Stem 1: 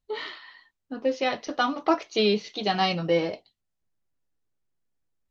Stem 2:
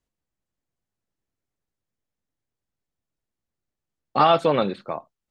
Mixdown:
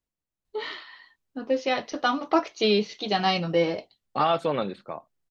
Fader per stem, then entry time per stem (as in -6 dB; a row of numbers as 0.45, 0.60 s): +0.5, -6.0 dB; 0.45, 0.00 s